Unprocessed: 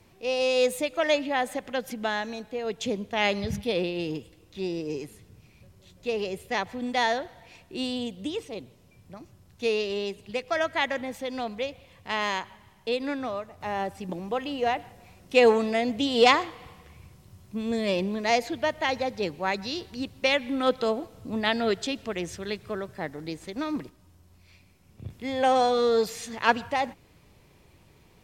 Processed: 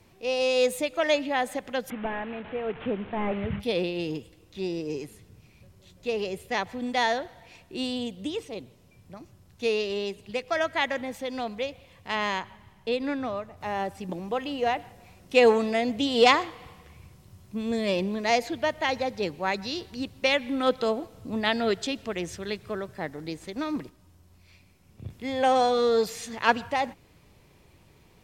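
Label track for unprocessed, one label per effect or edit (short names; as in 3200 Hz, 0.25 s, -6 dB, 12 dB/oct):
1.900000	3.600000	delta modulation 16 kbps, step -36.5 dBFS
12.150000	13.570000	tone controls bass +4 dB, treble -4 dB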